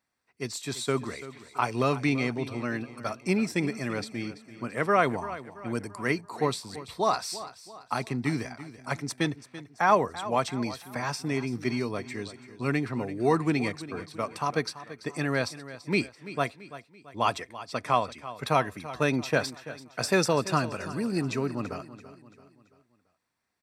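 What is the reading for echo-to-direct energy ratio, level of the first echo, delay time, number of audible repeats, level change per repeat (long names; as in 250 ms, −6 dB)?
−14.0 dB, −15.0 dB, 336 ms, 3, −7.0 dB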